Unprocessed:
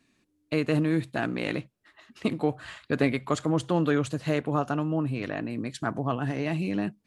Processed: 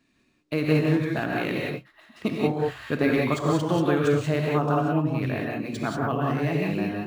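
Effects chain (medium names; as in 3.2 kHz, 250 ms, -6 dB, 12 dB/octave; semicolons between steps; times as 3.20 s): gated-style reverb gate 210 ms rising, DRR -2 dB; decimation joined by straight lines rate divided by 3×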